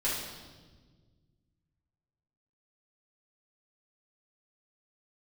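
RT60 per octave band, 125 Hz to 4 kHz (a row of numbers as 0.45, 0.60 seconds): 2.7, 2.3, 1.7, 1.2, 1.1, 1.3 seconds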